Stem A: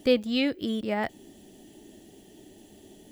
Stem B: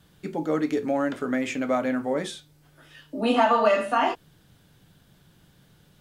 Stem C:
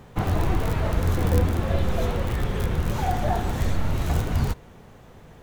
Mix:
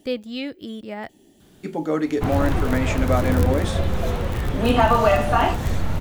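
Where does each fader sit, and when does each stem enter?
-4.0 dB, +2.5 dB, +1.0 dB; 0.00 s, 1.40 s, 2.05 s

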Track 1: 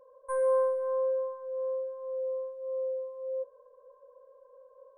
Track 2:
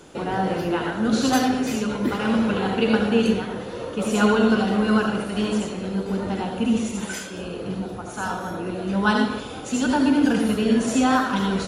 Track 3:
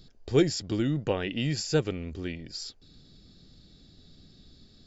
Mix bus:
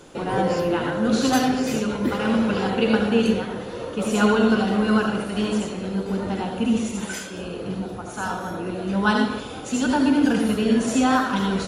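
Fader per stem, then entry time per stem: -1.5 dB, 0.0 dB, -8.0 dB; 0.00 s, 0.00 s, 0.00 s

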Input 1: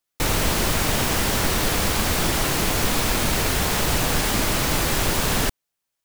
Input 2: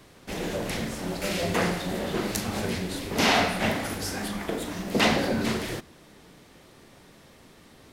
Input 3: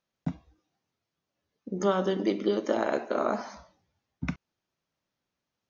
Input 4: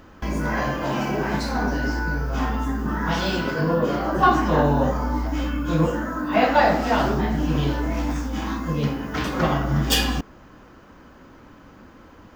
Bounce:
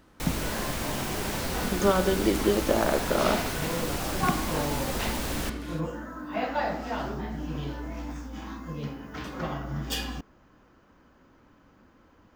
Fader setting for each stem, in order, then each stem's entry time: -11.5 dB, -12.5 dB, +2.5 dB, -11.5 dB; 0.00 s, 0.00 s, 0.00 s, 0.00 s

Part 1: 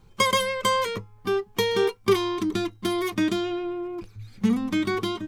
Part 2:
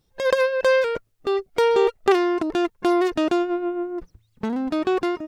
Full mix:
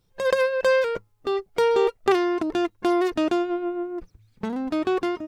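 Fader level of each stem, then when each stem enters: -18.0 dB, -2.0 dB; 0.00 s, 0.00 s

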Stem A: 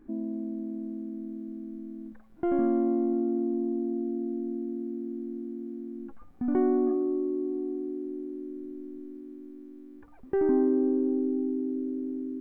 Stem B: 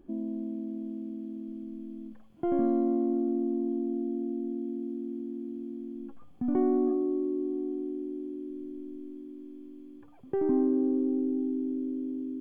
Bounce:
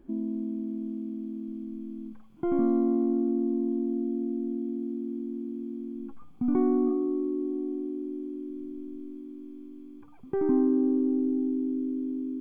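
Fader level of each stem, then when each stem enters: -5.0 dB, 0.0 dB; 0.00 s, 0.00 s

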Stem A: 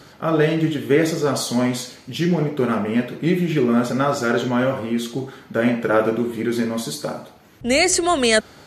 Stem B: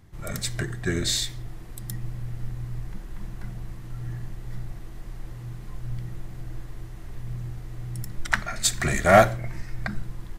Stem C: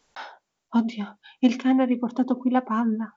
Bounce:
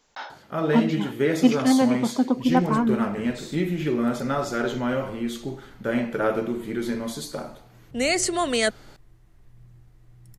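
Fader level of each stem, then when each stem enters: -6.0 dB, -17.0 dB, +1.5 dB; 0.30 s, 2.30 s, 0.00 s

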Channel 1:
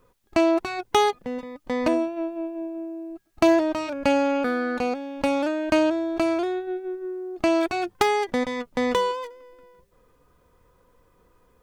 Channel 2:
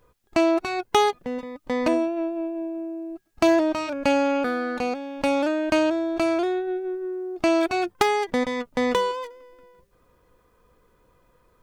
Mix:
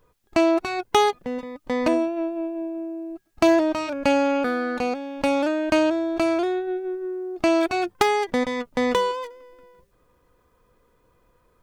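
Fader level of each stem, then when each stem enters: -8.5 dB, -2.5 dB; 0.00 s, 0.00 s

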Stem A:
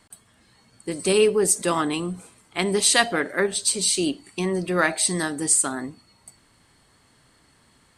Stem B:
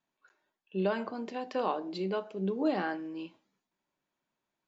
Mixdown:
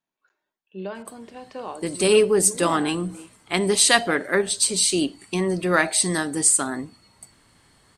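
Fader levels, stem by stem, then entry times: +1.5 dB, -3.0 dB; 0.95 s, 0.00 s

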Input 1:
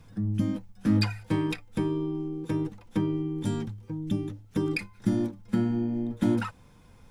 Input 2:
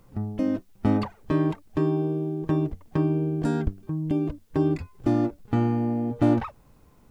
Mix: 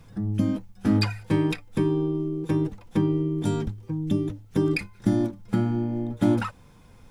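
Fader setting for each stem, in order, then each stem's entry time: +2.5 dB, -8.5 dB; 0.00 s, 0.00 s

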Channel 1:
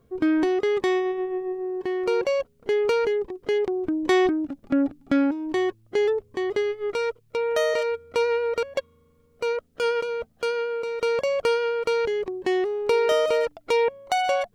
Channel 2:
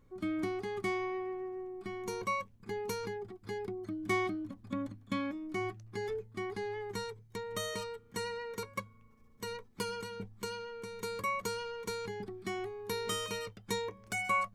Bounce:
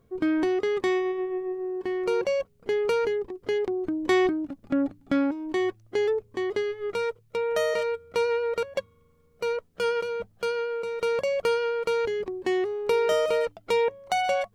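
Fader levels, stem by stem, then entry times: -2.5 dB, -7.0 dB; 0.00 s, 0.00 s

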